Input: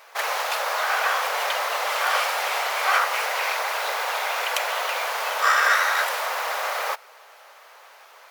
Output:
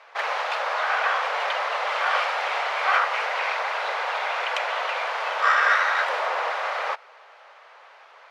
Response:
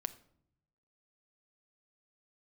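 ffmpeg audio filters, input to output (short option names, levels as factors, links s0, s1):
-filter_complex "[0:a]asettb=1/sr,asplit=3[s0][s1][s2];[s0]atrim=end=6.084[s3];[s1]atrim=start=6.08:end=6.5,asetpts=PTS-STARTPTS,afade=t=in:d=0.004:c=qsin,afade=t=out:st=0.416:d=0.004:c=qsin,lowshelf=f=480:g=10[s4];[s2]atrim=start=6.496[s5];[s3][s4]acrossfade=d=0.004:c1=hsin:c2=qsin[s6];[s6][s5]acrossfade=d=0.004:c1=qsin:c2=hsin,highpass=330,lowpass=3300"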